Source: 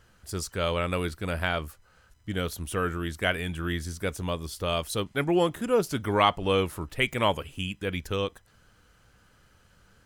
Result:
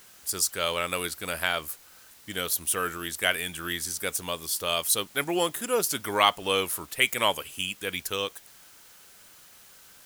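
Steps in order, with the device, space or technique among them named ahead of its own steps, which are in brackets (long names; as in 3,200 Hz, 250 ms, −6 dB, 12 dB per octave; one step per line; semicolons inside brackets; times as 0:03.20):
turntable without a phono preamp (RIAA equalisation recording; white noise bed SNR 24 dB)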